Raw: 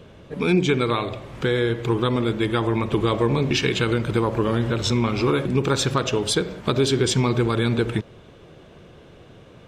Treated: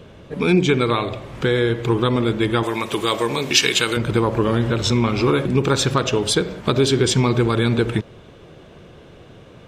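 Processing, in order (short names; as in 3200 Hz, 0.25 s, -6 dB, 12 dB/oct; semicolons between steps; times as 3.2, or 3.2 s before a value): 2.63–3.97 RIAA curve recording; gain +3 dB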